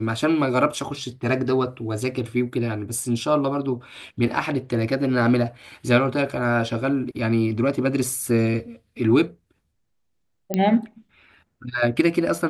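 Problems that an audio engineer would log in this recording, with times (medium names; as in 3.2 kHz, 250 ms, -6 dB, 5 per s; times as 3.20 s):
10.54 s: pop -10 dBFS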